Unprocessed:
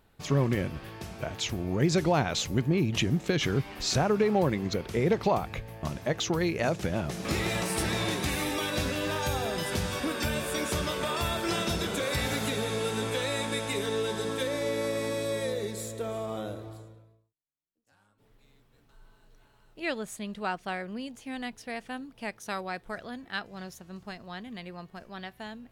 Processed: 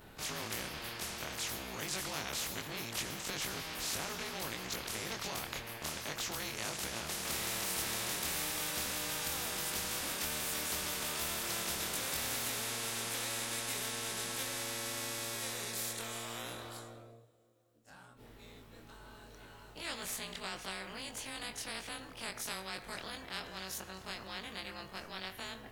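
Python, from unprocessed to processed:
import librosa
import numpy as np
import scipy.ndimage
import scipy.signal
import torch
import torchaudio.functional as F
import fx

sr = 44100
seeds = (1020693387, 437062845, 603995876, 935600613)

y = fx.frame_reverse(x, sr, frame_ms=53.0)
y = fx.rev_double_slope(y, sr, seeds[0], early_s=0.52, late_s=3.3, knee_db=-20, drr_db=19.0)
y = fx.spectral_comp(y, sr, ratio=4.0)
y = y * librosa.db_to_amplitude(-5.5)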